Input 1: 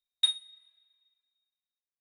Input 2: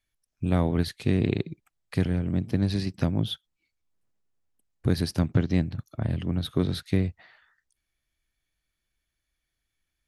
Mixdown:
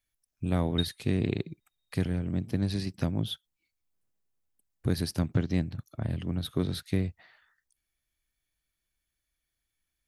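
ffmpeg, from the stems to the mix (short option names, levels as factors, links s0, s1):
-filter_complex "[0:a]asplit=2[s0][s1];[s1]afreqshift=1.7[s2];[s0][s2]amix=inputs=2:normalize=1,adelay=550,volume=1.19[s3];[1:a]highshelf=f=8800:g=9,volume=0.631,asplit=2[s4][s5];[s5]apad=whole_len=112834[s6];[s3][s6]sidechaincompress=threshold=0.0355:ratio=8:attack=16:release=1340[s7];[s7][s4]amix=inputs=2:normalize=0"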